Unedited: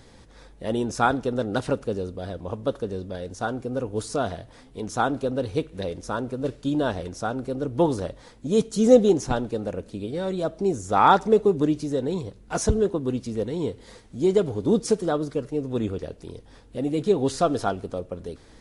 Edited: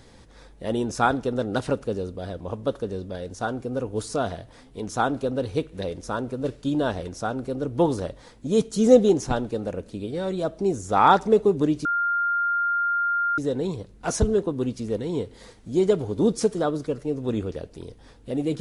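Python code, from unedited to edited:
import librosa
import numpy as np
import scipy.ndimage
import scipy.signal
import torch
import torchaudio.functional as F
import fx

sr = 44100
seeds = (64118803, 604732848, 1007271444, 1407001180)

y = fx.edit(x, sr, fx.insert_tone(at_s=11.85, length_s=1.53, hz=1400.0, db=-20.5), tone=tone)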